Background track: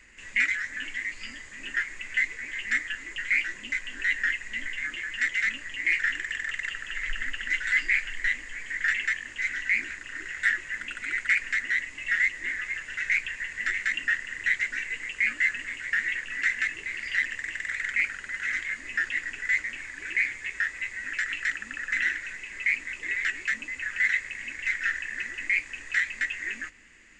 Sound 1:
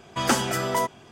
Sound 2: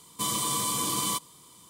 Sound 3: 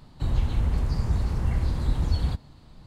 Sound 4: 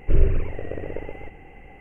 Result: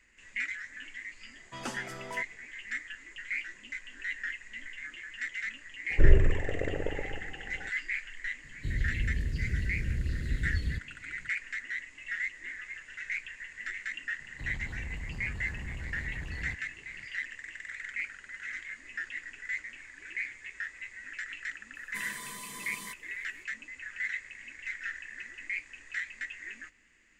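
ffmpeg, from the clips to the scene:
ffmpeg -i bed.wav -i cue0.wav -i cue1.wav -i cue2.wav -i cue3.wav -filter_complex "[3:a]asplit=2[link_01][link_02];[0:a]volume=-10dB[link_03];[1:a]lowpass=9900[link_04];[link_01]asuperstop=centerf=960:order=4:qfactor=0.6[link_05];[link_02]asoftclip=type=tanh:threshold=-25.5dB[link_06];[2:a]aecho=1:1:4.8:0.57[link_07];[link_04]atrim=end=1.11,asetpts=PTS-STARTPTS,volume=-16.5dB,afade=type=in:duration=0.004:curve=hsin,afade=type=out:start_time=1.106:duration=0.004:curve=hsin,adelay=1360[link_08];[4:a]atrim=end=1.8,asetpts=PTS-STARTPTS,volume=-1.5dB,afade=type=in:duration=0.004:curve=hsin,afade=type=out:start_time=1.796:duration=0.004:curve=hsin,adelay=5900[link_09];[link_05]atrim=end=2.86,asetpts=PTS-STARTPTS,volume=-7dB,afade=type=in:duration=0.004:curve=hsin,afade=type=out:start_time=2.856:duration=0.004:curve=hsin,adelay=8430[link_10];[link_06]atrim=end=2.86,asetpts=PTS-STARTPTS,volume=-10dB,afade=type=in:duration=0.004:curve=hsin,afade=type=out:start_time=2.856:duration=0.004:curve=hsin,adelay=14190[link_11];[link_07]atrim=end=1.69,asetpts=PTS-STARTPTS,volume=-16.5dB,afade=type=in:duration=0.004:curve=hsin,afade=type=out:start_time=1.686:duration=0.004:curve=hsin,adelay=21750[link_12];[link_03][link_08][link_09][link_10][link_11][link_12]amix=inputs=6:normalize=0" out.wav

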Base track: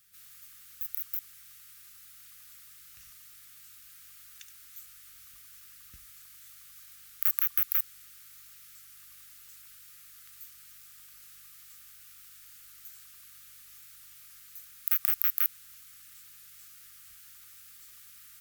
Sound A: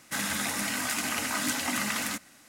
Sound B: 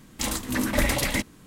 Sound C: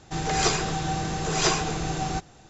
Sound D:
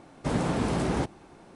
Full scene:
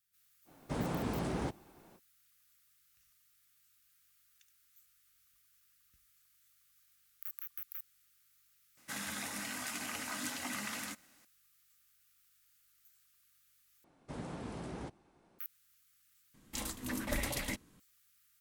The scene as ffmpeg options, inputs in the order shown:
ffmpeg -i bed.wav -i cue0.wav -i cue1.wav -i cue2.wav -i cue3.wav -filter_complex "[4:a]asplit=2[link_01][link_02];[0:a]volume=-18dB[link_03];[2:a]highshelf=frequency=9000:gain=4[link_04];[link_03]asplit=3[link_05][link_06][link_07];[link_05]atrim=end=13.844[link_08];[link_02]atrim=end=1.55,asetpts=PTS-STARTPTS,volume=-16.5dB[link_09];[link_06]atrim=start=15.386:end=16.344[link_10];[link_04]atrim=end=1.46,asetpts=PTS-STARTPTS,volume=-13dB[link_11];[link_07]atrim=start=17.796[link_12];[link_01]atrim=end=1.55,asetpts=PTS-STARTPTS,volume=-9dB,afade=type=in:duration=0.05,afade=type=out:start_time=1.5:duration=0.05,adelay=450[link_13];[1:a]atrim=end=2.48,asetpts=PTS-STARTPTS,volume=-10.5dB,afade=type=in:duration=0.004:curve=hsin,afade=type=out:start_time=2.476:duration=0.004:curve=hsin,adelay=8770[link_14];[link_08][link_09]acrossfade=duration=0.004:curve1=hsin:curve2=hsin[link_15];[link_15][link_10]acrossfade=duration=0.004:curve1=hsin:curve2=hsin[link_16];[link_16][link_11]acrossfade=duration=0.004:curve1=hsin:curve2=hsin[link_17];[link_17][link_12]acrossfade=duration=0.004:curve1=hsin:curve2=hsin[link_18];[link_18][link_13][link_14]amix=inputs=3:normalize=0" out.wav

